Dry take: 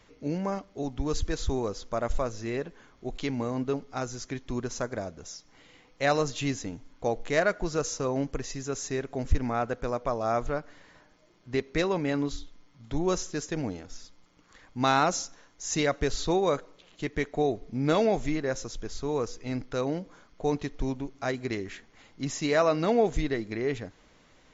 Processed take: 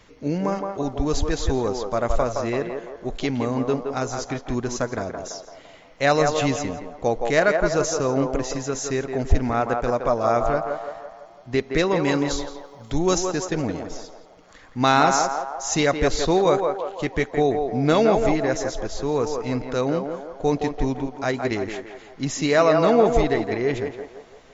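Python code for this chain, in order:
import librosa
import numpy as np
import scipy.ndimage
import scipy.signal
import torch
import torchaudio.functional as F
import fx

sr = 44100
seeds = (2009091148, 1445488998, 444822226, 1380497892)

y = fx.high_shelf(x, sr, hz=fx.line((12.02, 3800.0), (13.18, 5600.0)), db=11.0, at=(12.02, 13.18), fade=0.02)
y = fx.echo_banded(y, sr, ms=168, feedback_pct=58, hz=770.0, wet_db=-3.0)
y = F.gain(torch.from_numpy(y), 6.0).numpy()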